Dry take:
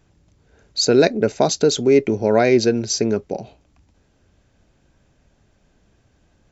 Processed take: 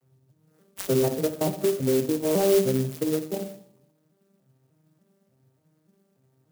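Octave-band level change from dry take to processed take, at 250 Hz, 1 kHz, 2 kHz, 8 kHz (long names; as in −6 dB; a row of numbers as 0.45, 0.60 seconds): −6.5 dB, −10.5 dB, −14.0 dB, can't be measured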